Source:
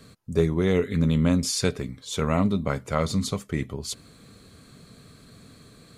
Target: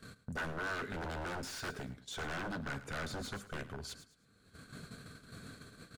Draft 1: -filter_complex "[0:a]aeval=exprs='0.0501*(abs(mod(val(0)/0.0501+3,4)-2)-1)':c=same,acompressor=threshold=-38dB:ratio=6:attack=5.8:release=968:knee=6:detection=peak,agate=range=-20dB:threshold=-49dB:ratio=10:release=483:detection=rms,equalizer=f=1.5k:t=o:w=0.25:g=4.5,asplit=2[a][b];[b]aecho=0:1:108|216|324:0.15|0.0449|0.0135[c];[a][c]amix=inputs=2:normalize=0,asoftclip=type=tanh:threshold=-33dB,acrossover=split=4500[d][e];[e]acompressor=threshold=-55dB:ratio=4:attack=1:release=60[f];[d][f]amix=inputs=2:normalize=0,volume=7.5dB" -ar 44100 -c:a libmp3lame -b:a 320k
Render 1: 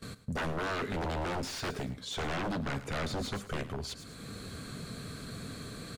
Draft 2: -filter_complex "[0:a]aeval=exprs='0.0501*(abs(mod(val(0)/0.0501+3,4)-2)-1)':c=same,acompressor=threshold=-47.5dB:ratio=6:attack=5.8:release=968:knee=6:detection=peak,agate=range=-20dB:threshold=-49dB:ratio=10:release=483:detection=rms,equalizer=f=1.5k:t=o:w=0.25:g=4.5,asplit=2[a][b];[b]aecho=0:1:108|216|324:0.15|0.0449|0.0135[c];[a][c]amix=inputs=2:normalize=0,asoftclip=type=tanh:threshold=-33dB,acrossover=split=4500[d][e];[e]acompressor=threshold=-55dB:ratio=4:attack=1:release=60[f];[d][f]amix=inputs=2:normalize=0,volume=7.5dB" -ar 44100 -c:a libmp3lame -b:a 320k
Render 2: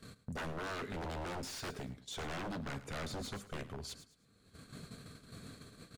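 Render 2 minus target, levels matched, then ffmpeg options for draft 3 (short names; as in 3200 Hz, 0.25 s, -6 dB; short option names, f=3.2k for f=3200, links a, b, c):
2000 Hz band -4.0 dB
-filter_complex "[0:a]aeval=exprs='0.0501*(abs(mod(val(0)/0.0501+3,4)-2)-1)':c=same,acompressor=threshold=-47.5dB:ratio=6:attack=5.8:release=968:knee=6:detection=peak,agate=range=-20dB:threshold=-49dB:ratio=10:release=483:detection=rms,equalizer=f=1.5k:t=o:w=0.25:g=13.5,asplit=2[a][b];[b]aecho=0:1:108|216|324:0.15|0.0449|0.0135[c];[a][c]amix=inputs=2:normalize=0,asoftclip=type=tanh:threshold=-33dB,acrossover=split=4500[d][e];[e]acompressor=threshold=-55dB:ratio=4:attack=1:release=60[f];[d][f]amix=inputs=2:normalize=0,volume=7.5dB" -ar 44100 -c:a libmp3lame -b:a 320k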